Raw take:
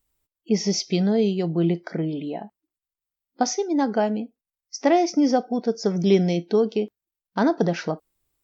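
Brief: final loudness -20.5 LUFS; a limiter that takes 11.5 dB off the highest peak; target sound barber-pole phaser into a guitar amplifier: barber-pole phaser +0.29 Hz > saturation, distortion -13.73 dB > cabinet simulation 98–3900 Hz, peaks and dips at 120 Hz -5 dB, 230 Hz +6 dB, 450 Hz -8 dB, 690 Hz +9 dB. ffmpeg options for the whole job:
-filter_complex "[0:a]alimiter=limit=0.126:level=0:latency=1,asplit=2[s0][s1];[s1]afreqshift=0.29[s2];[s0][s2]amix=inputs=2:normalize=1,asoftclip=threshold=0.0473,highpass=98,equalizer=f=120:t=q:w=4:g=-5,equalizer=f=230:t=q:w=4:g=6,equalizer=f=450:t=q:w=4:g=-8,equalizer=f=690:t=q:w=4:g=9,lowpass=f=3900:w=0.5412,lowpass=f=3900:w=1.3066,volume=3.98"

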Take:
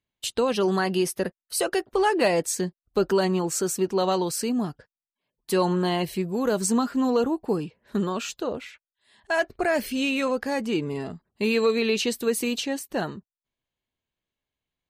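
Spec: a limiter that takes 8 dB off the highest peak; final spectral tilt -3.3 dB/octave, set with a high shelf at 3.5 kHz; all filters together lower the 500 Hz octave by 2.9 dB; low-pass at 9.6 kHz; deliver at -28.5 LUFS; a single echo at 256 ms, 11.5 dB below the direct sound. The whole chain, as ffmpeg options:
-af "lowpass=9600,equalizer=f=500:t=o:g=-4,highshelf=f=3500:g=8.5,alimiter=limit=0.168:level=0:latency=1,aecho=1:1:256:0.266,volume=0.794"

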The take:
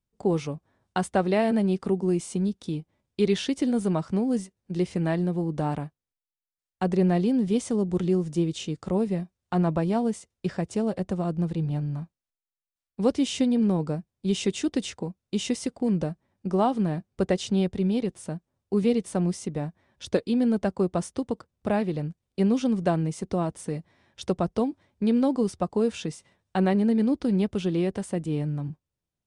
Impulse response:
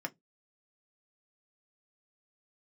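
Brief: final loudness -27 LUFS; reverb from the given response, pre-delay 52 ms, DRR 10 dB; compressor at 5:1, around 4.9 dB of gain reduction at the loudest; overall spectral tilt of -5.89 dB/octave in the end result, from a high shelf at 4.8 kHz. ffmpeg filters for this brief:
-filter_complex "[0:a]highshelf=f=4800:g=6.5,acompressor=threshold=0.0708:ratio=5,asplit=2[s0][s1];[1:a]atrim=start_sample=2205,adelay=52[s2];[s1][s2]afir=irnorm=-1:irlink=0,volume=0.251[s3];[s0][s3]amix=inputs=2:normalize=0,volume=1.26"

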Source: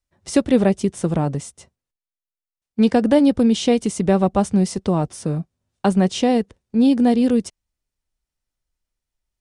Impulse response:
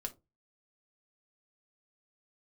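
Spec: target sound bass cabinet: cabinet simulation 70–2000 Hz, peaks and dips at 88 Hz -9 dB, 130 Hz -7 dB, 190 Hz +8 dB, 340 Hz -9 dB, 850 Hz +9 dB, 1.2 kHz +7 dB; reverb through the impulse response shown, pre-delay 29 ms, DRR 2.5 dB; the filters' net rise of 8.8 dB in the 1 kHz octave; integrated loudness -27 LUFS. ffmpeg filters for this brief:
-filter_complex "[0:a]equalizer=f=1000:t=o:g=4,asplit=2[s0][s1];[1:a]atrim=start_sample=2205,adelay=29[s2];[s1][s2]afir=irnorm=-1:irlink=0,volume=0.891[s3];[s0][s3]amix=inputs=2:normalize=0,highpass=f=70:w=0.5412,highpass=f=70:w=1.3066,equalizer=f=88:t=q:w=4:g=-9,equalizer=f=130:t=q:w=4:g=-7,equalizer=f=190:t=q:w=4:g=8,equalizer=f=340:t=q:w=4:g=-9,equalizer=f=850:t=q:w=4:g=9,equalizer=f=1200:t=q:w=4:g=7,lowpass=f=2000:w=0.5412,lowpass=f=2000:w=1.3066,volume=0.237"

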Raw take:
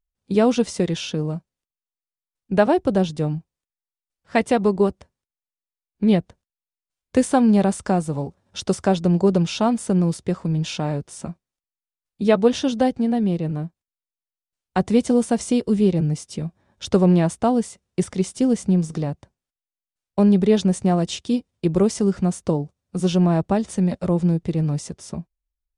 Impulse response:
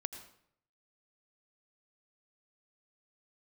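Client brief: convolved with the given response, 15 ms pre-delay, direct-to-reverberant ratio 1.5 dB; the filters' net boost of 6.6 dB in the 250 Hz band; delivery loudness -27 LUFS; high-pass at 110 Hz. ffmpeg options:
-filter_complex "[0:a]highpass=110,equalizer=f=250:t=o:g=9,asplit=2[s0][s1];[1:a]atrim=start_sample=2205,adelay=15[s2];[s1][s2]afir=irnorm=-1:irlink=0,volume=0.944[s3];[s0][s3]amix=inputs=2:normalize=0,volume=0.211"

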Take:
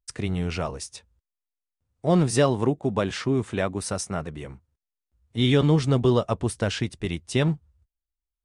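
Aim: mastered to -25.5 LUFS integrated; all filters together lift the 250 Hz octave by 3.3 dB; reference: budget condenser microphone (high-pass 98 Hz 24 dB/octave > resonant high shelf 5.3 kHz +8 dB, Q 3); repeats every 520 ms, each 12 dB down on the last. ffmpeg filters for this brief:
-af "highpass=f=98:w=0.5412,highpass=f=98:w=1.3066,equalizer=f=250:t=o:g=4.5,highshelf=f=5300:t=q:w=3:g=8,aecho=1:1:520|1040|1560:0.251|0.0628|0.0157,volume=0.708"

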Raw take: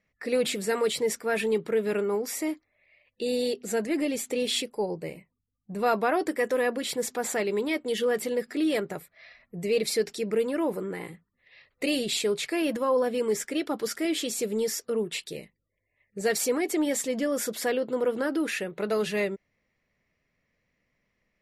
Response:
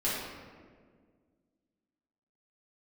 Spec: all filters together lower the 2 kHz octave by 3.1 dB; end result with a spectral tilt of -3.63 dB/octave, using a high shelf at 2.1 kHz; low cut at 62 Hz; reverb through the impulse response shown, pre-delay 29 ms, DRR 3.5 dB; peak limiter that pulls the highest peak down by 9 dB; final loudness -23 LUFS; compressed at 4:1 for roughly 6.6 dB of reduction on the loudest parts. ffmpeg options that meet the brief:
-filter_complex "[0:a]highpass=62,equalizer=f=2000:t=o:g=-6,highshelf=f=2100:g=3.5,acompressor=threshold=0.0355:ratio=4,alimiter=level_in=1.68:limit=0.0631:level=0:latency=1,volume=0.596,asplit=2[s0][s1];[1:a]atrim=start_sample=2205,adelay=29[s2];[s1][s2]afir=irnorm=-1:irlink=0,volume=0.251[s3];[s0][s3]amix=inputs=2:normalize=0,volume=3.76"

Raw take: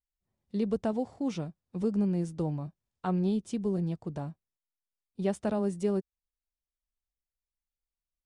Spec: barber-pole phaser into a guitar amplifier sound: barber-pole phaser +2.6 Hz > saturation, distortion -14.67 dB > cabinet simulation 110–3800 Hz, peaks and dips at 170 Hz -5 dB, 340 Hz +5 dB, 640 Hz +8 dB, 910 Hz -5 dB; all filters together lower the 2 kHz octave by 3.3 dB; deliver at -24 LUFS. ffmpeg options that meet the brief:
-filter_complex "[0:a]equalizer=f=2000:t=o:g=-4.5,asplit=2[s0][s1];[s1]afreqshift=2.6[s2];[s0][s2]amix=inputs=2:normalize=1,asoftclip=threshold=0.0376,highpass=110,equalizer=f=170:t=q:w=4:g=-5,equalizer=f=340:t=q:w=4:g=5,equalizer=f=640:t=q:w=4:g=8,equalizer=f=910:t=q:w=4:g=-5,lowpass=f=3800:w=0.5412,lowpass=f=3800:w=1.3066,volume=4.73"

